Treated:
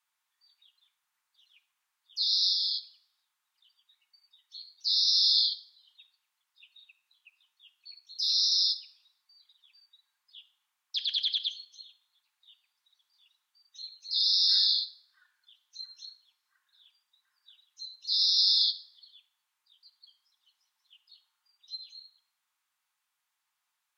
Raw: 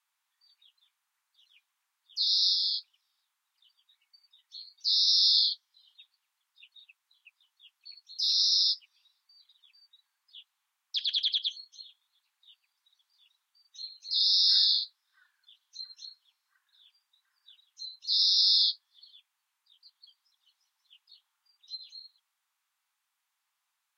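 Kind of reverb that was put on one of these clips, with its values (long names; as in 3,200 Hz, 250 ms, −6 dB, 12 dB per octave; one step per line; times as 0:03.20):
rectangular room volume 2,400 cubic metres, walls furnished, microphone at 0.93 metres
level −1 dB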